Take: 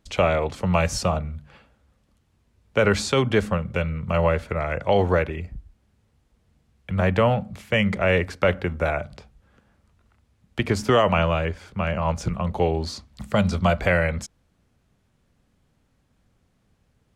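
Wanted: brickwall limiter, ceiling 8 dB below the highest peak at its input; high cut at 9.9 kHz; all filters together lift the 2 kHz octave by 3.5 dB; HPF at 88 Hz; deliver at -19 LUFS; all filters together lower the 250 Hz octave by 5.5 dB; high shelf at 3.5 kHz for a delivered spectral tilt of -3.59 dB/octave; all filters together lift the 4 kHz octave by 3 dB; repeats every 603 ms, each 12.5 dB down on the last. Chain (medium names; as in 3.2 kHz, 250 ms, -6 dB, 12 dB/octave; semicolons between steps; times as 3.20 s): high-pass 88 Hz; low-pass 9.9 kHz; peaking EQ 250 Hz -8.5 dB; peaking EQ 2 kHz +5 dB; treble shelf 3.5 kHz -8.5 dB; peaking EQ 4 kHz +8 dB; peak limiter -13 dBFS; feedback delay 603 ms, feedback 24%, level -12.5 dB; trim +7.5 dB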